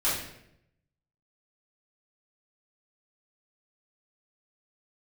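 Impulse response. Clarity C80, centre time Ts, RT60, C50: 6.0 dB, 53 ms, 0.75 s, 2.5 dB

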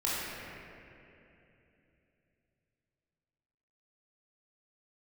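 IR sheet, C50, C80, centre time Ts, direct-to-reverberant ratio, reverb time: -4.0 dB, -2.0 dB, 0.187 s, -8.5 dB, 2.9 s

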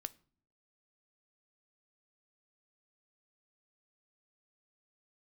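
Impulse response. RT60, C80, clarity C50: not exponential, 27.5 dB, 22.5 dB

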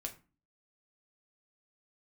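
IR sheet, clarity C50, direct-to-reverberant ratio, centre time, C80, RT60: 13.5 dB, 2.5 dB, 10 ms, 19.0 dB, 0.35 s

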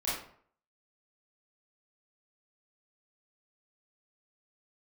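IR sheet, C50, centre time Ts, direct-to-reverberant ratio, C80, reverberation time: 1.0 dB, 54 ms, -10.0 dB, 6.0 dB, 0.55 s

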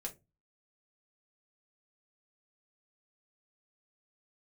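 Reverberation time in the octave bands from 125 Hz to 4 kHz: 0.45, 0.35, 0.25, 0.20, 0.20, 0.15 s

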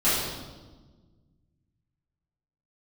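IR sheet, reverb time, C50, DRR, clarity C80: 1.3 s, -1.0 dB, -13.5 dB, 2.0 dB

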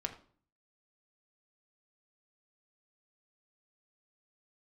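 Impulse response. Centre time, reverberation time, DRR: 10 ms, 0.45 s, 2.5 dB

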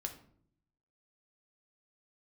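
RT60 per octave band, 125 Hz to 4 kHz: 1.0, 0.90, 0.70, 0.55, 0.45, 0.35 s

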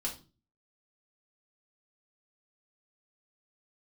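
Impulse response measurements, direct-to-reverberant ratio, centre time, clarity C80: -3.5 dB, 18 ms, 17.0 dB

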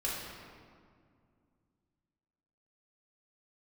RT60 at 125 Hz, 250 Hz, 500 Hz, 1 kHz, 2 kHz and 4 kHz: 3.2, 3.0, 2.3, 2.0, 1.6, 1.2 s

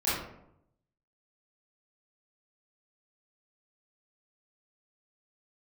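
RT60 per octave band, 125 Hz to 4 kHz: 1.1, 0.90, 0.80, 0.75, 0.55, 0.40 s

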